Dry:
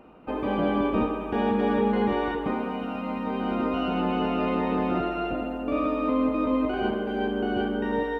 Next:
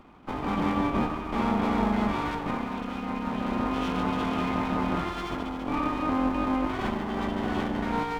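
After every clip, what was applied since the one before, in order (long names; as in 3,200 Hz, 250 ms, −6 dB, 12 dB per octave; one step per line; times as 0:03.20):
lower of the sound and its delayed copy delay 0.88 ms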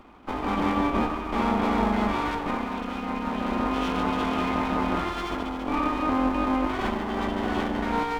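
parametric band 140 Hz −10 dB 0.73 octaves
level +3 dB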